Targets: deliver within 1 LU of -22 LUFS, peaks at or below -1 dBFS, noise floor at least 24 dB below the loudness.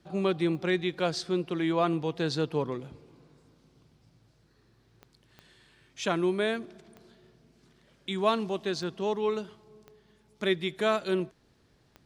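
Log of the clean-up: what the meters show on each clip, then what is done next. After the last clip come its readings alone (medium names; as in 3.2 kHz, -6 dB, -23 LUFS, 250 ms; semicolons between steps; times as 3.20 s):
clicks found 7; loudness -30.0 LUFS; peak level -11.5 dBFS; loudness target -22.0 LUFS
-> de-click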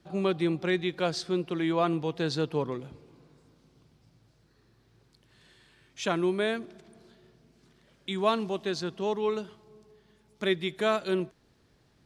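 clicks found 0; loudness -30.0 LUFS; peak level -11.5 dBFS; loudness target -22.0 LUFS
-> trim +8 dB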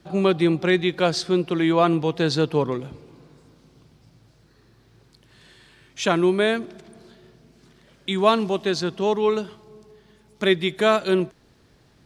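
loudness -22.0 LUFS; peak level -3.5 dBFS; noise floor -57 dBFS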